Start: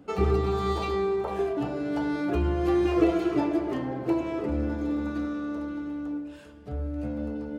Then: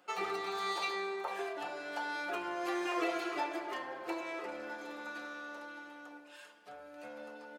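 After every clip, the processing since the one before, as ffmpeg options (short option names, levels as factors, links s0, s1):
-af "highpass=940,aecho=1:1:5.6:0.45"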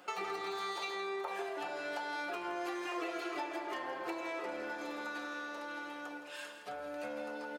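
-af "acompressor=threshold=0.00447:ratio=4,aecho=1:1:166:0.282,volume=2.66"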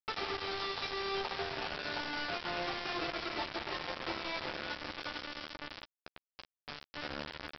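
-filter_complex "[0:a]aresample=11025,acrusher=bits=5:mix=0:aa=0.000001,aresample=44100,asplit=2[s0][s1];[s1]adelay=13,volume=0.251[s2];[s0][s2]amix=inputs=2:normalize=0"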